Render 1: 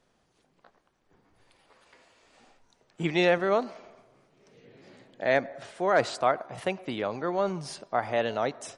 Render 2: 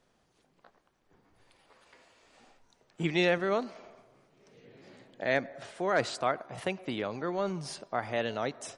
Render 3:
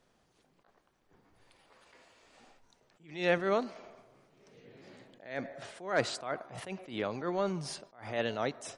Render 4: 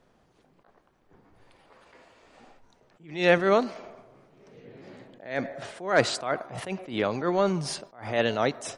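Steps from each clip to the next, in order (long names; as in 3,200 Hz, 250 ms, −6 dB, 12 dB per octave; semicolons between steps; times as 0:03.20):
dynamic equaliser 760 Hz, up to −5 dB, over −36 dBFS, Q 0.81; level −1 dB
level that may rise only so fast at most 130 dB per second
one half of a high-frequency compander decoder only; level +8 dB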